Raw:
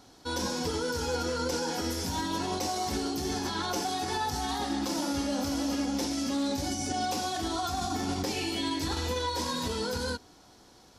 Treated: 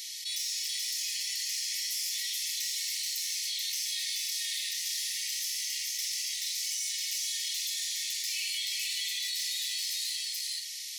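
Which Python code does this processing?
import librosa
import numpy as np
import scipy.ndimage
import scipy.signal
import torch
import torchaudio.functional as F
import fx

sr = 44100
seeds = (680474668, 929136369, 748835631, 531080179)

y = fx.high_shelf(x, sr, hz=7300.0, db=8.5)
y = np.clip(y, -10.0 ** (-28.5 / 20.0), 10.0 ** (-28.5 / 20.0))
y = fx.brickwall_highpass(y, sr, low_hz=1800.0)
y = fx.doubler(y, sr, ms=50.0, db=-12.0)
y = y + 10.0 ** (-3.0 / 20.0) * np.pad(y, (int(431 * sr / 1000.0), 0))[:len(y)]
y = fx.env_flatten(y, sr, amount_pct=70)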